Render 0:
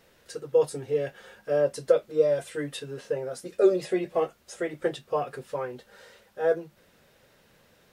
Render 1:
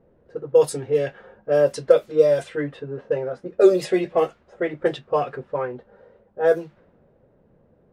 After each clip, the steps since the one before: level-controlled noise filter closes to 520 Hz, open at -20 dBFS; treble shelf 5.1 kHz +4.5 dB; trim +6 dB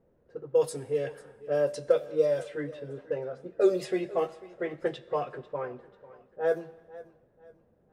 Schroeder reverb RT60 1.4 s, combs from 29 ms, DRR 18 dB; modulated delay 493 ms, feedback 36%, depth 56 cents, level -19 dB; trim -8.5 dB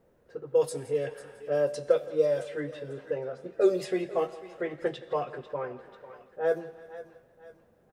feedback delay 168 ms, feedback 52%, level -21 dB; tape noise reduction on one side only encoder only

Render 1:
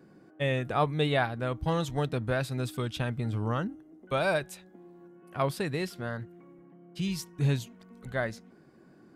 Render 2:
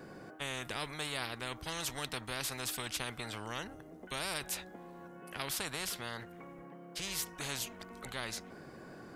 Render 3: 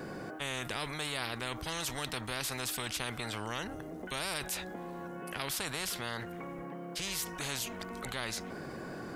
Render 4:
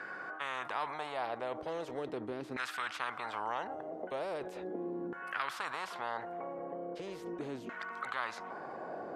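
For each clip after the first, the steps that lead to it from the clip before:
spectrum-flattening compressor 4:1; trim -7.5 dB
level flattener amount 50%
LFO band-pass saw down 0.39 Hz 300–1600 Hz; trim +8 dB

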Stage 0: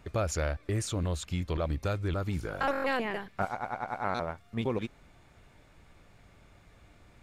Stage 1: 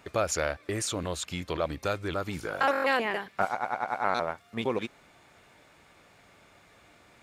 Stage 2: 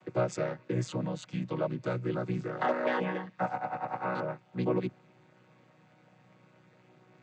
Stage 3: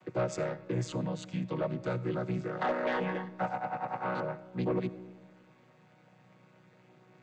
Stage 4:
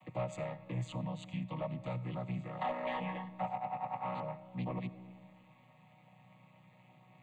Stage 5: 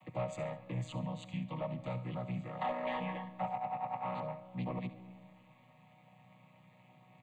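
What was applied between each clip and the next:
high-pass 420 Hz 6 dB/octave; trim +5.5 dB
vocoder on a held chord major triad, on B2; trim -1 dB
saturation -22.5 dBFS, distortion -18 dB; on a send at -17 dB: reverberation RT60 1.6 s, pre-delay 30 ms
static phaser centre 1.5 kHz, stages 6; in parallel at -0.5 dB: compression, threshold -45 dBFS, peak gain reduction 15 dB; on the sum: trim -4 dB
feedback delay 69 ms, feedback 37%, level -14.5 dB

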